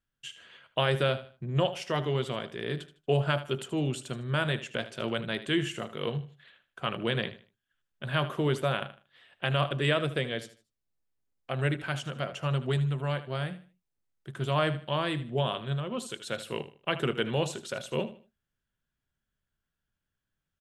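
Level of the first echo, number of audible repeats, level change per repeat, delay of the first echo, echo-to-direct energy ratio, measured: -14.0 dB, 2, -11.0 dB, 77 ms, -13.5 dB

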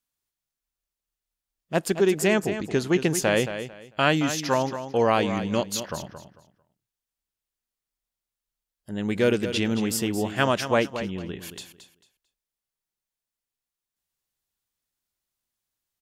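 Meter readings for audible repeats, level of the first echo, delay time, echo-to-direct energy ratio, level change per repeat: 2, -10.5 dB, 0.223 s, -10.5 dB, -13.0 dB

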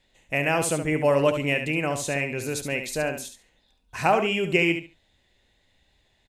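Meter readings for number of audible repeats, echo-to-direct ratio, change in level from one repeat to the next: 2, -8.0 dB, -14.0 dB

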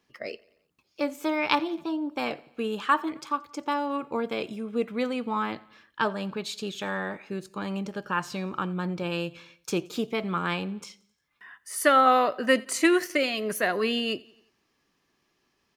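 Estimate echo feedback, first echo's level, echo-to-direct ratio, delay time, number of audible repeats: 56%, -24.0 dB, -22.5 dB, 88 ms, 3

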